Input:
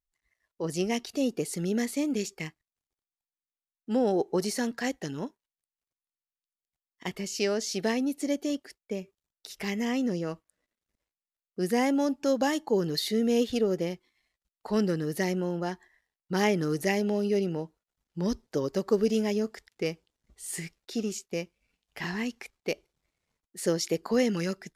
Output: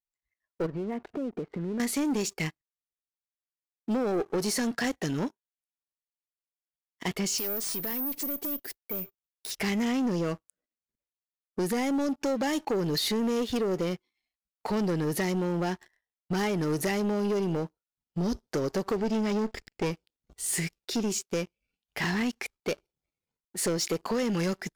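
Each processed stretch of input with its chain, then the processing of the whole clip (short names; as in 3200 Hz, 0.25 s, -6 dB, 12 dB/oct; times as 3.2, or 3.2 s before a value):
0.66–1.8 LPF 1700 Hz 24 dB/oct + compressor 5:1, threshold -39 dBFS
7.38–9.51 compressor 3:1, threshold -36 dBFS + tube stage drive 33 dB, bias 0.6 + careless resampling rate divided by 3×, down none, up zero stuff
18.96–19.91 minimum comb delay 0.41 ms + air absorption 64 m
whole clip: spectral noise reduction 7 dB; compressor 4:1, threshold -30 dBFS; sample leveller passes 3; gain -2.5 dB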